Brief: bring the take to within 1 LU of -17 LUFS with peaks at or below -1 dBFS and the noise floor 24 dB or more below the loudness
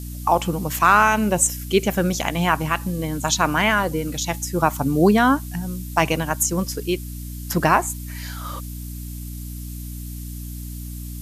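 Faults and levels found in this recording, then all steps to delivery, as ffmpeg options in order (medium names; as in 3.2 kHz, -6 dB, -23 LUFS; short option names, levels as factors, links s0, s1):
hum 60 Hz; highest harmonic 300 Hz; hum level -30 dBFS; noise floor -33 dBFS; noise floor target -45 dBFS; loudness -20.5 LUFS; peak level -2.5 dBFS; loudness target -17.0 LUFS
-> -af "bandreject=f=60:t=h:w=4,bandreject=f=120:t=h:w=4,bandreject=f=180:t=h:w=4,bandreject=f=240:t=h:w=4,bandreject=f=300:t=h:w=4"
-af "afftdn=nr=12:nf=-33"
-af "volume=1.5,alimiter=limit=0.891:level=0:latency=1"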